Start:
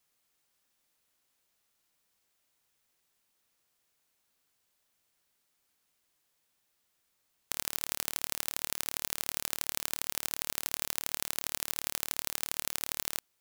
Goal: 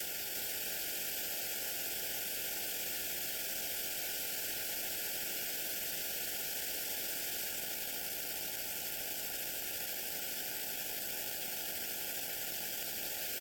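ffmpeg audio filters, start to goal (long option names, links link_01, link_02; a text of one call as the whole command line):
ffmpeg -i in.wav -af "aeval=exprs='val(0)+0.5*0.0531*sgn(val(0))':channel_layout=same,equalizer=frequency=160:width_type=o:width=0.33:gain=-11,equalizer=frequency=315:width_type=o:width=0.33:gain=-6,equalizer=frequency=1000:width_type=o:width=0.33:gain=-7,equalizer=frequency=2500:width_type=o:width=0.33:gain=7,equalizer=frequency=5000:width_type=o:width=0.33:gain=8,equalizer=frequency=8000:width_type=o:width=0.33:gain=5,equalizer=frequency=12500:width_type=o:width=0.33:gain=9,afftfilt=real='re*lt(hypot(re,im),0.0251)':imag='im*lt(hypot(re,im),0.0251)':win_size=1024:overlap=0.75,lowshelf=frequency=250:gain=-7.5,bandreject=frequency=60:width_type=h:width=6,bandreject=frequency=120:width_type=h:width=6,bandreject=frequency=180:width_type=h:width=6,bandreject=frequency=240:width_type=h:width=6,bandreject=frequency=300:width_type=h:width=6,bandreject=frequency=360:width_type=h:width=6,asetrate=35002,aresample=44100,atempo=1.25992,asuperstop=centerf=1100:order=20:qfactor=2.1,aecho=1:1:348:0.562,volume=-1.5dB" out.wav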